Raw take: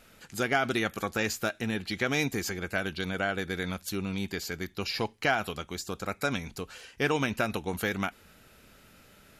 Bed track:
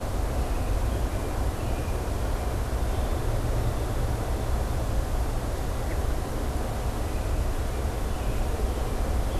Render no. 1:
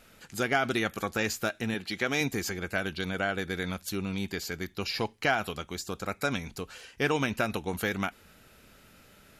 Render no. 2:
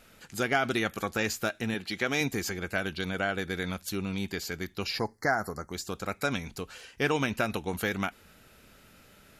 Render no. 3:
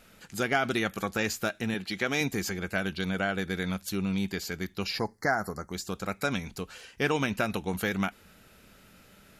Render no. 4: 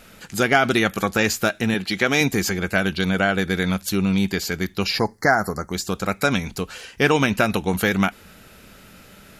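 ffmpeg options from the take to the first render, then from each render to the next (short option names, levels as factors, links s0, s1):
-filter_complex "[0:a]asettb=1/sr,asplit=3[s0][s1][s2];[s0]atrim=end=1.744[s3];[s1]atrim=start=1.74:end=2.21,asetpts=PTS-STARTPTS,afade=t=in:d=0.004:c=qsin,afade=t=out:st=0.466:d=0.004:c=qsin,highpass=f=190:p=1[s4];[s2]atrim=start=2.206[s5];[s3][s4]acrossfade=d=0.004:c1=hsin:c2=qsin[s6];[s6][s5]acrossfade=d=0.004:c1=qsin:c2=hsin"
-filter_complex "[0:a]asplit=3[s0][s1][s2];[s0]afade=t=out:st=4.98:d=0.02[s3];[s1]asuperstop=centerf=3000:order=20:qfactor=1.4,afade=t=in:st=4.98:d=0.02,afade=t=out:st=5.72:d=0.02[s4];[s2]afade=t=in:st=5.72:d=0.02[s5];[s3][s4][s5]amix=inputs=3:normalize=0"
-af "equalizer=f=190:w=6.8:g=5.5"
-af "volume=2.99"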